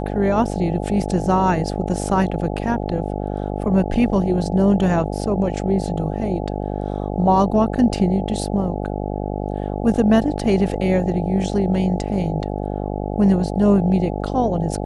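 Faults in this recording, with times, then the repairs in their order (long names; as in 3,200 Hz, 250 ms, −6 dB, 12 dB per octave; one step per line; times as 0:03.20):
mains buzz 50 Hz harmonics 17 −25 dBFS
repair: hum removal 50 Hz, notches 17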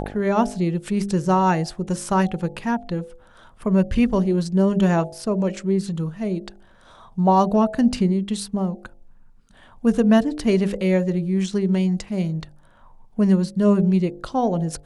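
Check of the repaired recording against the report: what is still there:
none of them is left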